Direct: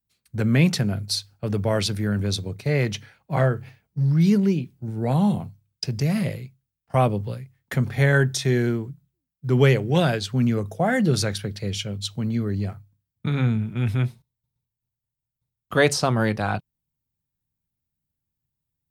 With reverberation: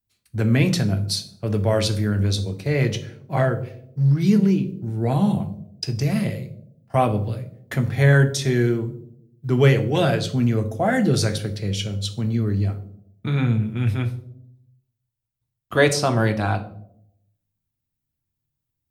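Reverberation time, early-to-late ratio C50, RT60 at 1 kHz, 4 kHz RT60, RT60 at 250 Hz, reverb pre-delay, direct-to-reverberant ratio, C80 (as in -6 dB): 0.75 s, 13.5 dB, 0.60 s, 0.40 s, 1.0 s, 3 ms, 6.0 dB, 16.5 dB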